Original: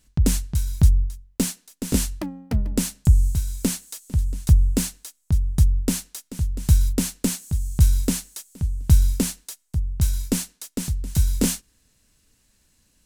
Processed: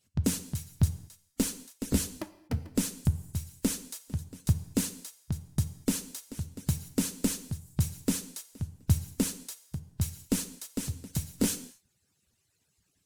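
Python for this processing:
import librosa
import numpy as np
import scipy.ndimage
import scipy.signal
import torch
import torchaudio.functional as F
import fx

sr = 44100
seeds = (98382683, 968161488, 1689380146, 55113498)

y = fx.hpss_only(x, sr, part='percussive')
y = fx.rev_gated(y, sr, seeds[0], gate_ms=270, shape='falling', drr_db=11.0)
y = y * 10.0 ** (-5.5 / 20.0)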